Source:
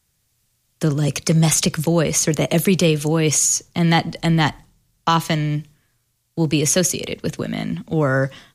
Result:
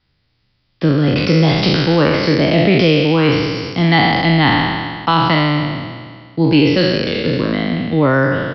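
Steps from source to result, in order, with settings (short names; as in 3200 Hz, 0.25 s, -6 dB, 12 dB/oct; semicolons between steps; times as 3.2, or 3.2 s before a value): spectral trails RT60 1.82 s; in parallel at -2.5 dB: limiter -8 dBFS, peak gain reduction 9.5 dB; on the sum: small resonant body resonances 290/2000 Hz, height 6 dB; downsampling 11025 Hz; gain -2.5 dB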